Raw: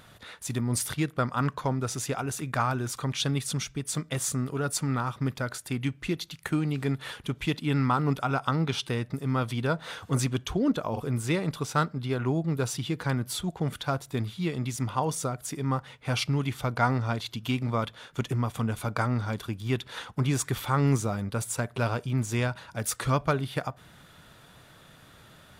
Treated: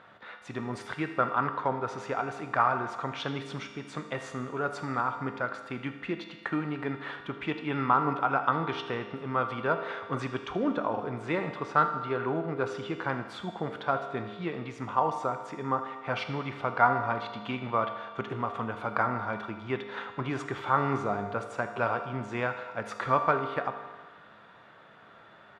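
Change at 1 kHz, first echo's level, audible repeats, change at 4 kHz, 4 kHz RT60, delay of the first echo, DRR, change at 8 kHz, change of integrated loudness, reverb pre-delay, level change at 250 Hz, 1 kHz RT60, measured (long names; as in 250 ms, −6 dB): +4.0 dB, −15.5 dB, 1, −8.0 dB, 1.5 s, 79 ms, 6.0 dB, below −20 dB, −1.5 dB, 4 ms, −5.0 dB, 1.5 s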